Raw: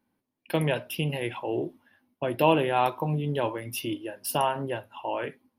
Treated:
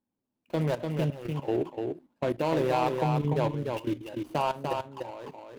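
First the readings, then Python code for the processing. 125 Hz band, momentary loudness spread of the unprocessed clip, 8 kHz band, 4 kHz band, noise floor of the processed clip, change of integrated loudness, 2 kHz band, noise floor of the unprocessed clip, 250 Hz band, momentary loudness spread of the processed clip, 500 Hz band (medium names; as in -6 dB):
+0.5 dB, 11 LU, under -10 dB, -7.0 dB, -85 dBFS, -1.5 dB, -6.0 dB, -81 dBFS, 0.0 dB, 9 LU, -1.0 dB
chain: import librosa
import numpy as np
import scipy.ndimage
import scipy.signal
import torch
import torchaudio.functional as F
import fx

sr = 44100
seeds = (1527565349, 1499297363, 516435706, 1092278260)

p1 = scipy.signal.medfilt(x, 25)
p2 = fx.level_steps(p1, sr, step_db=15)
p3 = p2 + fx.echo_single(p2, sr, ms=295, db=-4.5, dry=0)
y = p3 * 10.0 ** (3.5 / 20.0)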